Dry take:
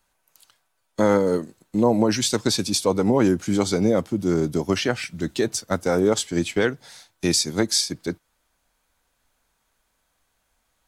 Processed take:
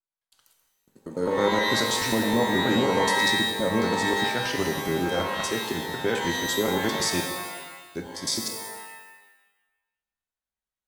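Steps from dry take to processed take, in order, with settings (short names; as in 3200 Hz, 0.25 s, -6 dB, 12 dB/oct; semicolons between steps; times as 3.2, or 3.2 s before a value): slices in reverse order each 0.106 s, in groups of 8; gate with hold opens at -48 dBFS; shimmer reverb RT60 1.1 s, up +12 st, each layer -2 dB, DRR 3.5 dB; gain -7 dB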